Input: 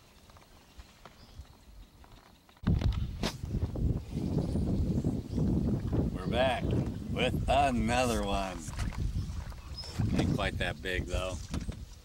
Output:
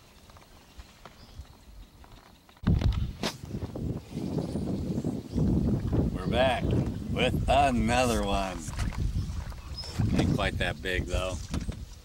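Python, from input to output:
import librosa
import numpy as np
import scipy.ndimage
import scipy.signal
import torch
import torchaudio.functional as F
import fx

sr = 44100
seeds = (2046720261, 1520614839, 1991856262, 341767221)

y = fx.highpass(x, sr, hz=200.0, slope=6, at=(3.11, 5.35))
y = y * librosa.db_to_amplitude(3.5)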